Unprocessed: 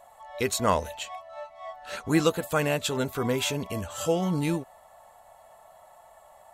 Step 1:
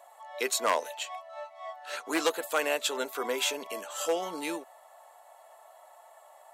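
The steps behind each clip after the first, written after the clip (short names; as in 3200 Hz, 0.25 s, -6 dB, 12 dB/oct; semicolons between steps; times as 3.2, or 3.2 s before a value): one-sided fold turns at -16.5 dBFS; Bessel high-pass 490 Hz, order 6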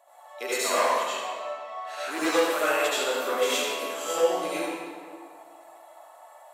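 reverb RT60 1.9 s, pre-delay 65 ms, DRR -11.5 dB; gain -6.5 dB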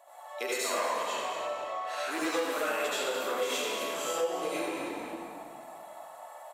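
on a send: frequency-shifting echo 0.223 s, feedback 39%, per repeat -44 Hz, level -11.5 dB; on the sum: compressor 2.5:1, threshold -35 dBFS, peak gain reduction 12.5 dB; gain +2.5 dB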